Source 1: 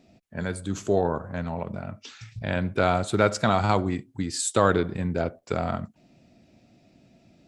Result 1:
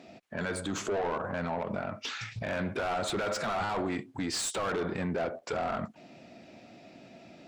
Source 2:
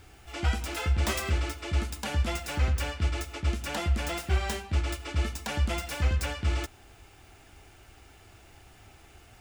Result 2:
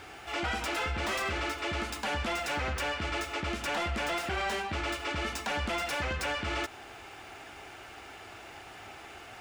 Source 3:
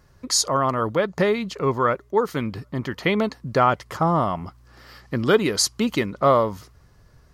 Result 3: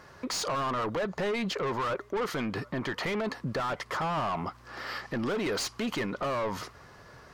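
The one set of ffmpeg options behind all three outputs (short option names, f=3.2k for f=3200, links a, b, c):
-filter_complex "[0:a]asplit=2[a][b];[b]highpass=f=720:p=1,volume=29dB,asoftclip=type=tanh:threshold=-5dB[c];[a][c]amix=inputs=2:normalize=0,lowpass=f=2.1k:p=1,volume=-6dB,alimiter=limit=-16.5dB:level=0:latency=1:release=70,volume=-9dB"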